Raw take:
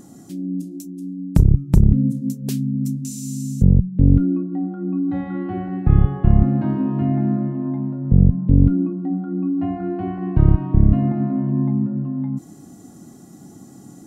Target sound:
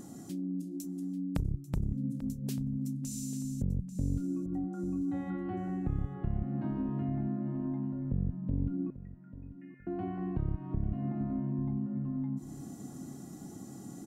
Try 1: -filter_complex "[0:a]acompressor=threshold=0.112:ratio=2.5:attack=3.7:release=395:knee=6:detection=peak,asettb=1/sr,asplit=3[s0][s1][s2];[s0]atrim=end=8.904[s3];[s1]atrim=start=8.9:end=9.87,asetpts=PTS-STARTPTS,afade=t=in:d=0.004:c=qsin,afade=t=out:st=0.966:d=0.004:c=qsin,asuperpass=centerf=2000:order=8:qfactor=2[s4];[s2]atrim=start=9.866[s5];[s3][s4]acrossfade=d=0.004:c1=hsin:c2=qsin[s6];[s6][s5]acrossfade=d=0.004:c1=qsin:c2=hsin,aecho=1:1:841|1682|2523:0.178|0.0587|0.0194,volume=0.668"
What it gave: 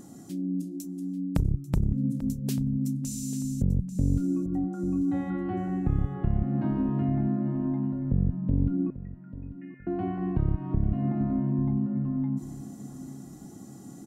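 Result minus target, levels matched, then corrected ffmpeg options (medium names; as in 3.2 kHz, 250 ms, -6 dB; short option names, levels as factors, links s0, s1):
compression: peak gain reduction -7 dB
-filter_complex "[0:a]acompressor=threshold=0.0282:ratio=2.5:attack=3.7:release=395:knee=6:detection=peak,asettb=1/sr,asplit=3[s0][s1][s2];[s0]atrim=end=8.904[s3];[s1]atrim=start=8.9:end=9.87,asetpts=PTS-STARTPTS,afade=t=in:d=0.004:c=qsin,afade=t=out:st=0.966:d=0.004:c=qsin,asuperpass=centerf=2000:order=8:qfactor=2[s4];[s2]atrim=start=9.866[s5];[s3][s4]acrossfade=d=0.004:c1=hsin:c2=qsin[s6];[s6][s5]acrossfade=d=0.004:c1=qsin:c2=hsin,aecho=1:1:841|1682|2523:0.178|0.0587|0.0194,volume=0.668"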